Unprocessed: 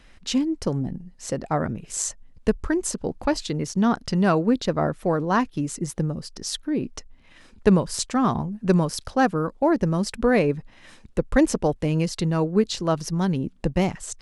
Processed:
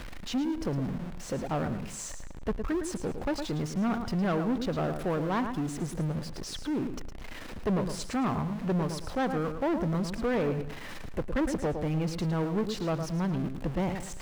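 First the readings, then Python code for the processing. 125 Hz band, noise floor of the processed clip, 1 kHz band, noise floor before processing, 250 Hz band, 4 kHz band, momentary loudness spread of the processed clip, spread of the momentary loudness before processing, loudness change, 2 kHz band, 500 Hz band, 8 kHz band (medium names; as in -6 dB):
-6.0 dB, -41 dBFS, -8.0 dB, -51 dBFS, -7.0 dB, -8.5 dB, 8 LU, 9 LU, -7.5 dB, -7.5 dB, -8.0 dB, -11.5 dB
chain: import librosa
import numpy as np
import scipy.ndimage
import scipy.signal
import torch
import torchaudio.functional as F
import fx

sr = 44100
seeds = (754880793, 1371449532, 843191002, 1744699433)

p1 = x + 0.5 * 10.0 ** (-28.0 / 20.0) * np.sign(x)
p2 = fx.high_shelf(p1, sr, hz=3700.0, db=-11.5)
p3 = p2 + fx.echo_feedback(p2, sr, ms=110, feedback_pct=28, wet_db=-9.5, dry=0)
p4 = 10.0 ** (-17.5 / 20.0) * np.tanh(p3 / 10.0 ** (-17.5 / 20.0))
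y = p4 * librosa.db_to_amplitude(-6.0)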